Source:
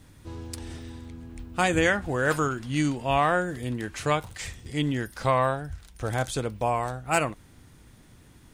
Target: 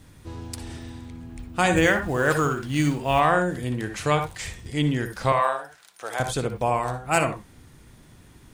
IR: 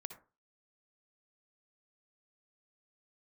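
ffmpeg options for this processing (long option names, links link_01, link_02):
-filter_complex "[0:a]asettb=1/sr,asplit=3[link_01][link_02][link_03];[link_01]atrim=end=1.764[link_04];[link_02]atrim=start=1.76:end=3.2,asetpts=PTS-STARTPTS,afade=type=in:duration=0.004:curve=qsin,afade=type=out:start_time=1.436:duration=0.004:curve=qsin,acrusher=bits=7:mode=log:mix=0:aa=0.000001[link_05];[link_03]atrim=start=3.196[link_06];[link_04][link_05]acrossfade=duration=0.004:curve1=hsin:curve2=qsin[link_07];[link_07][link_06]acrossfade=duration=0.004:curve1=qsin:curve2=hsin,asettb=1/sr,asplit=3[link_08][link_09][link_10];[link_08]atrim=end=5.324[link_11];[link_09]atrim=start=5.32:end=6.2,asetpts=PTS-STARTPTS,afade=type=in:duration=0.004:curve=qsin,afade=type=out:start_time=0.876:duration=0.004:curve=qsin,highpass=630[link_12];[link_10]atrim=start=6.196[link_13];[link_11][link_12]acrossfade=duration=0.004:curve1=hsin:curve2=qsin[link_14];[link_14][link_13]acrossfade=duration=0.004:curve1=qsin:curve2=hsin[link_15];[1:a]atrim=start_sample=2205,afade=type=out:start_time=0.15:duration=0.01,atrim=end_sample=7056[link_16];[link_15][link_16]afir=irnorm=-1:irlink=0,volume=6.5dB"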